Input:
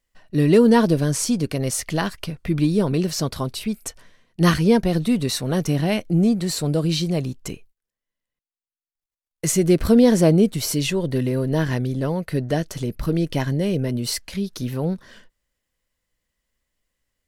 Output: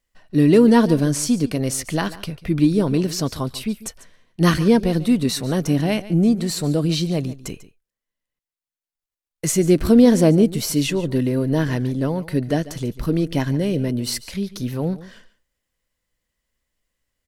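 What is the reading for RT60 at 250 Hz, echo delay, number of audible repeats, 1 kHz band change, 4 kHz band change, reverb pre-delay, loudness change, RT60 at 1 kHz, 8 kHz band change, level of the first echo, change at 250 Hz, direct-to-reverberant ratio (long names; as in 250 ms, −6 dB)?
no reverb audible, 144 ms, 1, 0.0 dB, 0.0 dB, no reverb audible, +1.5 dB, no reverb audible, 0.0 dB, −17.0 dB, +2.0 dB, no reverb audible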